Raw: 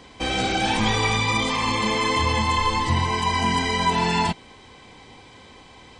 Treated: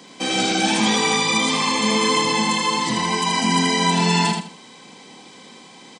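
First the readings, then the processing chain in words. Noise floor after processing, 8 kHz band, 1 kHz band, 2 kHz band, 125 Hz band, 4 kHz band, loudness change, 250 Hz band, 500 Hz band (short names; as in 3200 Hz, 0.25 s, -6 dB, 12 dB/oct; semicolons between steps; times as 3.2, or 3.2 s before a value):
-45 dBFS, +9.5 dB, +1.0 dB, +2.5 dB, -1.5 dB, +5.0 dB, +3.0 dB, +5.5 dB, +3.0 dB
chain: steep high-pass 170 Hz 36 dB/oct; tone controls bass +8 dB, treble +9 dB; on a send: feedback echo 80 ms, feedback 25%, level -4.5 dB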